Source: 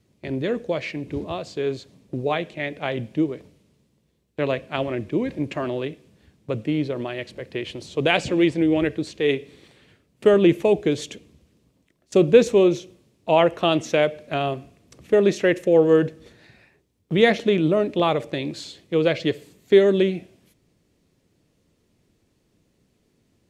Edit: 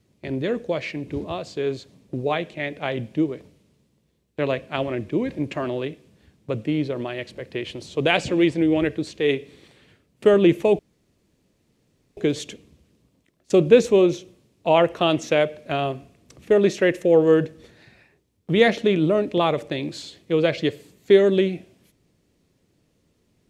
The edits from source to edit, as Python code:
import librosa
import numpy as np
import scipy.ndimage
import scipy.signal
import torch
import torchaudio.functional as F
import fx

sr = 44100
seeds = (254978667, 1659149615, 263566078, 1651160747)

y = fx.edit(x, sr, fx.insert_room_tone(at_s=10.79, length_s=1.38), tone=tone)